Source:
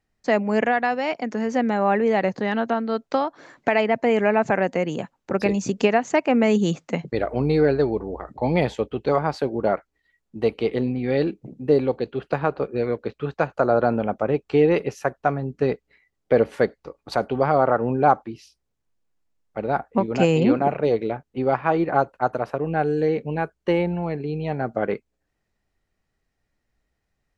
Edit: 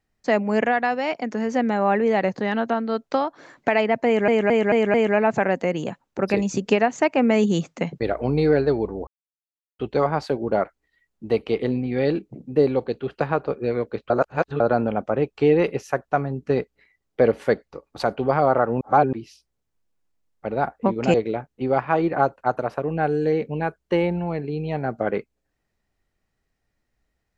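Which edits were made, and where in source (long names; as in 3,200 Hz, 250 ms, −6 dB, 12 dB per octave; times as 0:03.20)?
0:04.06: stutter 0.22 s, 5 plays
0:08.19–0:08.91: silence
0:13.22–0:13.72: reverse
0:17.93–0:18.25: reverse
0:20.26–0:20.90: remove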